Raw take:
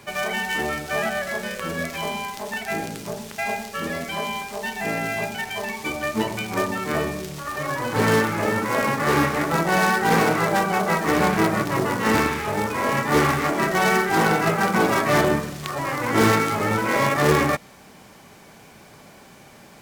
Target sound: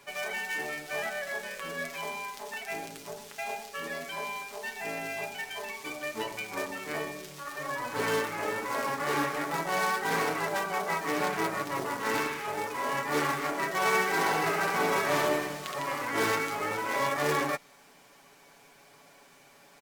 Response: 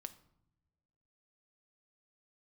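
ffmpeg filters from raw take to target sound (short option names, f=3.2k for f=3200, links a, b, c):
-filter_complex "[0:a]equalizer=f=82:w=0.4:g=-14,aecho=1:1:7.1:0.53,asplit=3[a][b][c];[a]afade=t=out:st=13.8:d=0.02[d];[b]aecho=1:1:70|154|254.8|375.8|520.9:0.631|0.398|0.251|0.158|0.1,afade=t=in:st=13.8:d=0.02,afade=t=out:st=16.03:d=0.02[e];[c]afade=t=in:st=16.03:d=0.02[f];[d][e][f]amix=inputs=3:normalize=0,volume=-8.5dB"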